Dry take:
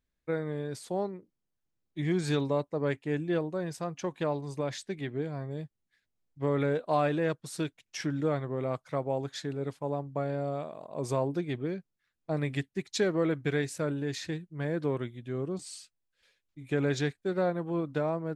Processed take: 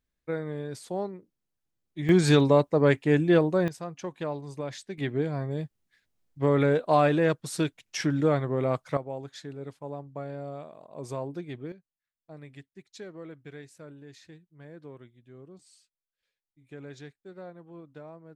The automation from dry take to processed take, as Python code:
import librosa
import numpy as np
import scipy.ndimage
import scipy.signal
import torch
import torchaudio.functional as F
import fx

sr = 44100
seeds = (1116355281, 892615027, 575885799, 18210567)

y = fx.gain(x, sr, db=fx.steps((0.0, 0.0), (2.09, 9.0), (3.68, -2.0), (4.98, 5.5), (8.97, -5.0), (11.72, -15.0)))